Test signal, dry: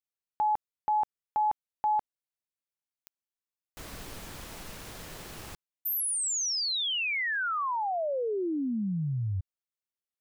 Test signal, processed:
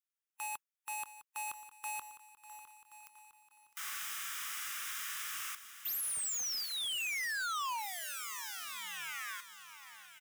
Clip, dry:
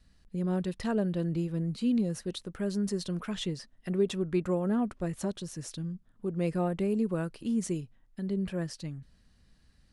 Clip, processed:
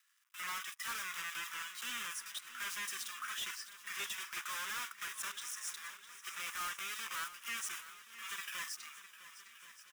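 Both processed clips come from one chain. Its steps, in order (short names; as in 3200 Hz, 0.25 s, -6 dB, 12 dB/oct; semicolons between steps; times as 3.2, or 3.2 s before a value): block floating point 3-bit; spectral noise reduction 8 dB; steep high-pass 1100 Hz 48 dB/oct; bell 4300 Hz -14.5 dB 0.23 oct; harmonic-percussive split percussive -6 dB; in parallel at +1 dB: vocal rider within 4 dB 0.5 s; on the sum: hard clip -36 dBFS; on a send: feedback echo 1.076 s, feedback 31%, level -16 dB; on the sum: lo-fi delay 0.657 s, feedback 55%, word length 11-bit, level -13.5 dB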